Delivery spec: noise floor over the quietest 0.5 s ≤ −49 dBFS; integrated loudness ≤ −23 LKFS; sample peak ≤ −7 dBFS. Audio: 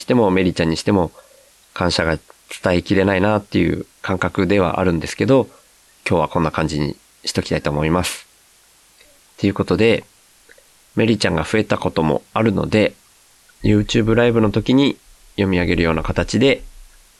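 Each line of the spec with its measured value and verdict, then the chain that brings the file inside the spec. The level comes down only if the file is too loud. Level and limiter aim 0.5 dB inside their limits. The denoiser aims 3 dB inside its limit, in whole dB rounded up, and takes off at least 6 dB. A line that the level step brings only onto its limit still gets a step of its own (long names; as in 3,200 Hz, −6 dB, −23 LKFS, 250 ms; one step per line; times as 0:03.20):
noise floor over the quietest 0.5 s −53 dBFS: in spec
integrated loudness −18.0 LKFS: out of spec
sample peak −4.5 dBFS: out of spec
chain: level −5.5 dB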